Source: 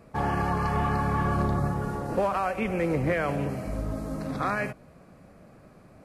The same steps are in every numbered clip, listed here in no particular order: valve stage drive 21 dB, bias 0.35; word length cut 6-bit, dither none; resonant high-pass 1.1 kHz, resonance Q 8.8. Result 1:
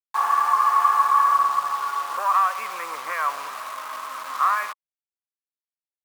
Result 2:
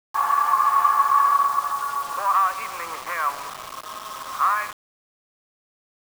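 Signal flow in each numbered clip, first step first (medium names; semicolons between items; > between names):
word length cut > valve stage > resonant high-pass; valve stage > resonant high-pass > word length cut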